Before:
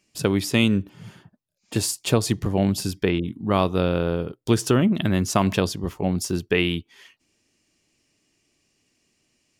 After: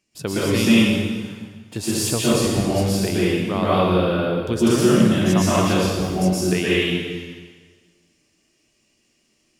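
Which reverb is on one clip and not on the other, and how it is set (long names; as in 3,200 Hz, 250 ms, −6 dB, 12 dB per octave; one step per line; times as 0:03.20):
dense smooth reverb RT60 1.5 s, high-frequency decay 0.95×, pre-delay 105 ms, DRR −9 dB
level −5.5 dB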